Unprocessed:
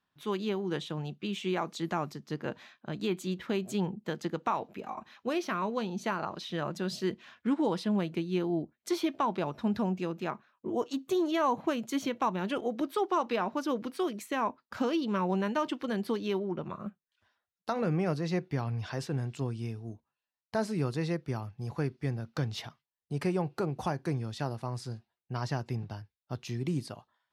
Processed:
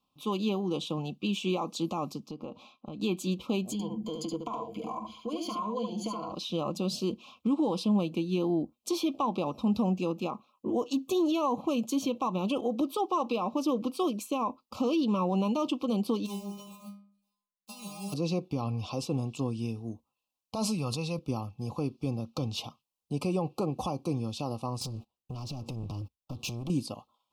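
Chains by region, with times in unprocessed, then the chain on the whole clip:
2.28–3.02 s: treble shelf 4.7 kHz -11 dB + compression 5:1, threshold -40 dBFS
3.72–6.32 s: rippled EQ curve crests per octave 1.8, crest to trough 16 dB + compression 5:1, threshold -37 dBFS + delay 73 ms -4.5 dB
16.25–18.12 s: formants flattened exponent 0.3 + inharmonic resonator 200 Hz, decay 0.53 s, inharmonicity 0.002
20.55–21.19 s: peaking EQ 330 Hz -11.5 dB 1.3 oct + decay stretcher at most 24 dB/s
24.81–26.70 s: bass shelf 280 Hz +7 dB + compression 16:1, threshold -41 dBFS + waveshaping leveller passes 3
whole clip: comb 3.8 ms, depth 40%; peak limiter -24 dBFS; Chebyshev band-stop 1.2–2.5 kHz, order 3; trim +4 dB

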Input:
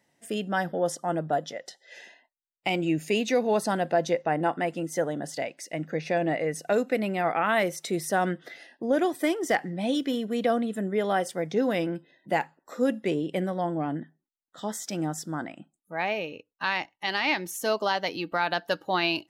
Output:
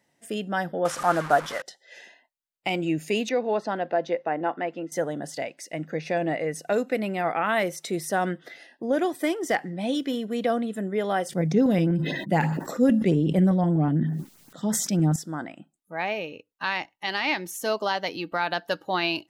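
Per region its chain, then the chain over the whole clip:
0.85–1.62 s: one-bit delta coder 64 kbps, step -34.5 dBFS + peaking EQ 1.3 kHz +14.5 dB 1.4 oct
3.29–4.92 s: high-pass 250 Hz + distance through air 200 m
11.29–15.16 s: peaking EQ 160 Hz +13 dB 1.4 oct + LFO notch saw up 8.1 Hz 510–4500 Hz + decay stretcher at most 39 dB/s
whole clip: none

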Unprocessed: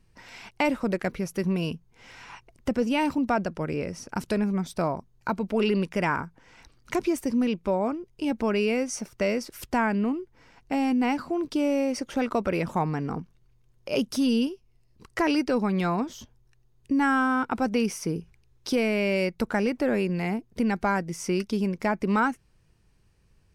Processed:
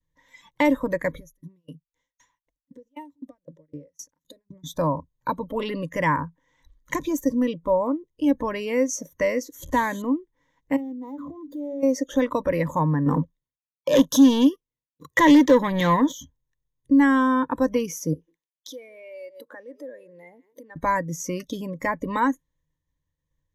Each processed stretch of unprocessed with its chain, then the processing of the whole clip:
1.17–4.64 s: tone controls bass -3 dB, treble +6 dB + compression 20:1, threshold -32 dBFS + sawtooth tremolo in dB decaying 3.9 Hz, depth 36 dB
9.55–10.02 s: one-bit delta coder 64 kbps, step -36.5 dBFS + tape noise reduction on one side only decoder only
10.76–11.83 s: median filter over 15 samples + de-hum 71.47 Hz, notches 4 + compression 5:1, threshold -37 dBFS
13.06–16.12 s: high-pass 120 Hz + waveshaping leveller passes 2
18.13–20.76 s: delay 148 ms -20.5 dB + compression, threshold -37 dBFS + high-pass 410 Hz
whole clip: expander -59 dBFS; spectral noise reduction 17 dB; rippled EQ curve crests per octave 1.1, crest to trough 16 dB

